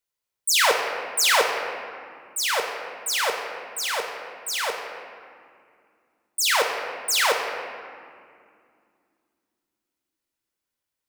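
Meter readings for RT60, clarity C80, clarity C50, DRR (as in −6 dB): 2.4 s, 5.0 dB, 3.5 dB, 1.5 dB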